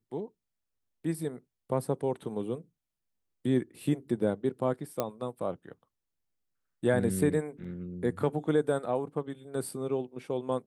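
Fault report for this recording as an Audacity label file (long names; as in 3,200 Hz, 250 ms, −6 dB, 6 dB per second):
5.000000	5.000000	click −15 dBFS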